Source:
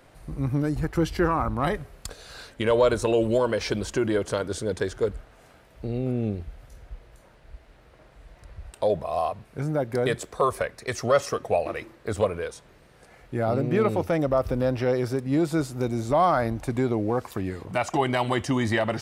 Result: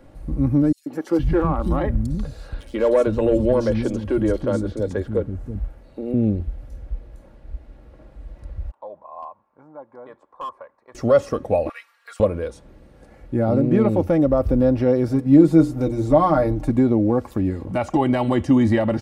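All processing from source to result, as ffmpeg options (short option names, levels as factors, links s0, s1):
-filter_complex "[0:a]asettb=1/sr,asplit=3[s0][s1][s2];[s0]atrim=end=0.724[s3];[s1]atrim=start=0.72:end=6.14,asetpts=PTS-STARTPTS,afade=t=in:d=0.004:c=qsin,afade=t=out:st=5.416:d=0.004:c=qsin,asoftclip=type=hard:threshold=0.168,acrossover=split=250|3800[s4][s5][s6];[s5]adelay=140[s7];[s4]adelay=470[s8];[s8][s7][s6]amix=inputs=3:normalize=0,atrim=end_sample=239022[s9];[s2]atrim=start=6.136[s10];[s3][s9]acrossfade=d=0.004:c1=hsin:c2=qsin[s11];[s11][s10]acrossfade=d=0.004:c1=qsin:c2=hsin,asettb=1/sr,asplit=3[s12][s13][s14];[s12]atrim=end=8.714[s15];[s13]atrim=start=8.71:end=10.95,asetpts=PTS-STARTPTS,afade=t=in:d=0.004:c=qsin,afade=t=out:st=2.236:d=0.004:c=qsin,bandpass=f=1000:t=q:w=6.7,asoftclip=type=hard:threshold=0.0501[s16];[s14]atrim=start=10.946[s17];[s15][s16]acrossfade=d=0.004:c1=hsin:c2=qsin[s18];[s18][s17]acrossfade=d=0.004:c1=qsin:c2=hsin,asettb=1/sr,asplit=3[s19][s20][s21];[s19]atrim=end=11.694[s22];[s20]atrim=start=11.69:end=12.2,asetpts=PTS-STARTPTS,afade=t=in:d=0.004:c=qsin,afade=t=out:st=0.506:d=0.004:c=qsin,highpass=f=1200:w=0.5412,highpass=f=1200:w=1.3066,aecho=1:1:4.3:0.8,atrim=end_sample=22491[s23];[s21]atrim=start=12.196[s24];[s22][s23]acrossfade=d=0.004:c1=hsin:c2=qsin[s25];[s25][s24]acrossfade=d=0.004:c1=qsin:c2=hsin,asettb=1/sr,asplit=3[s26][s27][s28];[s26]atrim=end=15.074[s29];[s27]atrim=start=15.07:end=16.7,asetpts=PTS-STARTPTS,afade=t=in:d=0.004:c=qsin,afade=t=out:st=1.626:d=0.004:c=qsin,bandreject=f=60:t=h:w=6,bandreject=f=120:t=h:w=6,bandreject=f=180:t=h:w=6,bandreject=f=240:t=h:w=6,bandreject=f=300:t=h:w=6,bandreject=f=360:t=h:w=6,bandreject=f=420:t=h:w=6,bandreject=f=480:t=h:w=6,aecho=1:1:6.5:0.65,atrim=end_sample=71883[s30];[s28]atrim=start=16.696[s31];[s29][s30]acrossfade=d=0.004:c1=hsin:c2=qsin[s32];[s32][s31]acrossfade=d=0.004:c1=qsin:c2=hsin,tiltshelf=f=660:g=8,aecho=1:1:3.6:0.44,acrossover=split=3900[s33][s34];[s34]acompressor=threshold=0.00631:ratio=4:attack=1:release=60[s35];[s33][s35]amix=inputs=2:normalize=0,volume=1.26"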